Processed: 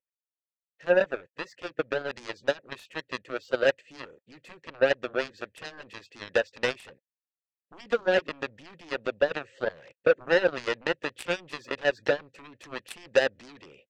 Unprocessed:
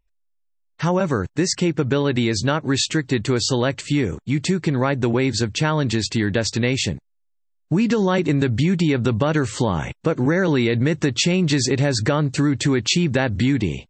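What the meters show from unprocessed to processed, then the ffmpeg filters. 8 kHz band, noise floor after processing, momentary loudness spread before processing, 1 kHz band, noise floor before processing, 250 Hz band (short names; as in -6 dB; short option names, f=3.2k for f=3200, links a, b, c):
under -20 dB, under -85 dBFS, 4 LU, -9.0 dB, -68 dBFS, -20.5 dB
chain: -filter_complex "[0:a]asplit=3[a][b][c];[a]bandpass=f=530:t=q:w=8,volume=0dB[d];[b]bandpass=f=1.84k:t=q:w=8,volume=-6dB[e];[c]bandpass=f=2.48k:t=q:w=8,volume=-9dB[f];[d][e][f]amix=inputs=3:normalize=0,aeval=exprs='0.178*(cos(1*acos(clip(val(0)/0.178,-1,1)))-cos(1*PI/2))+0.0316*(cos(7*acos(clip(val(0)/0.178,-1,1)))-cos(7*PI/2))':c=same,volume=5.5dB"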